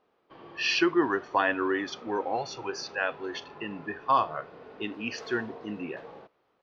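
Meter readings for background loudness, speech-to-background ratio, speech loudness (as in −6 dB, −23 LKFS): −48.0 LKFS, 18.0 dB, −30.0 LKFS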